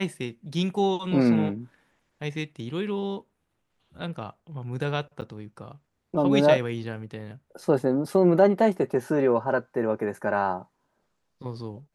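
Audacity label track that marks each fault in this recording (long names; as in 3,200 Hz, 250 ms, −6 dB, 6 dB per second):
5.210000	5.220000	drop-out 8.4 ms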